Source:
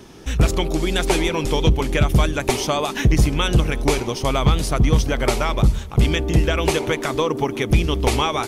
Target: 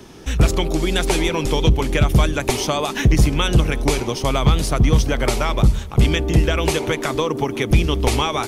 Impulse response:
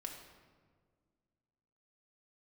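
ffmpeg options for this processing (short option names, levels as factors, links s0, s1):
-filter_complex "[0:a]acrossover=split=210|3000[s0][s1][s2];[s1]acompressor=threshold=0.126:ratio=6[s3];[s0][s3][s2]amix=inputs=3:normalize=0,volume=1.19"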